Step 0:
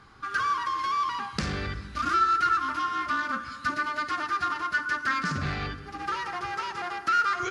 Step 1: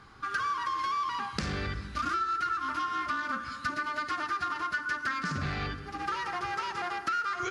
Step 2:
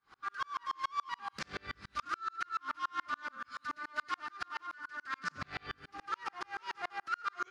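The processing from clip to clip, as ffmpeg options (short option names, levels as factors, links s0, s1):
-af "acompressor=threshold=0.0398:ratio=6"
-filter_complex "[0:a]asplit=2[s0][s1];[s1]highpass=f=720:p=1,volume=4.47,asoftclip=type=tanh:threshold=0.188[s2];[s0][s2]amix=inputs=2:normalize=0,lowpass=f=6200:p=1,volume=0.501,aeval=exprs='val(0)*pow(10,-39*if(lt(mod(-7*n/s,1),2*abs(-7)/1000),1-mod(-7*n/s,1)/(2*abs(-7)/1000),(mod(-7*n/s,1)-2*abs(-7)/1000)/(1-2*abs(-7)/1000))/20)':c=same,volume=0.631"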